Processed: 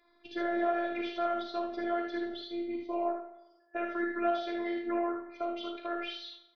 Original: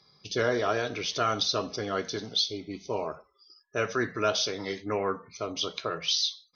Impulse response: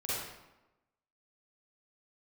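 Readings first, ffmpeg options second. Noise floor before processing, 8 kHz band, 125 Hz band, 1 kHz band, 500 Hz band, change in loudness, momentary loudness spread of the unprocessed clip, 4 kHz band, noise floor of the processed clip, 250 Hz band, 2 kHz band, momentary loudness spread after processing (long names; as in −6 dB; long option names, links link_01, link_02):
−66 dBFS, can't be measured, below −25 dB, −1.5 dB, −3.5 dB, −5.0 dB, 9 LU, −15.5 dB, −67 dBFS, +2.0 dB, −5.0 dB, 7 LU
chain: -filter_complex "[0:a]alimiter=level_in=0.5dB:limit=-24dB:level=0:latency=1:release=184,volume=-0.5dB,highpass=frequency=130:width=0.5412,highpass=frequency=130:width=1.3066,equalizer=frequency=170:width_type=q:width=4:gain=6,equalizer=frequency=280:width_type=q:width=4:gain=-3,equalizer=frequency=670:width_type=q:width=4:gain=8,equalizer=frequency=1800:width_type=q:width=4:gain=5,lowpass=frequency=2900:width=0.5412,lowpass=frequency=2900:width=1.3066,asplit=2[link_01][link_02];[1:a]atrim=start_sample=2205[link_03];[link_02][link_03]afir=irnorm=-1:irlink=0,volume=-15.5dB[link_04];[link_01][link_04]amix=inputs=2:normalize=0,afftfilt=real='hypot(re,im)*cos(PI*b)':imag='0':win_size=512:overlap=0.75,aecho=1:1:38|55|76:0.355|0.398|0.531"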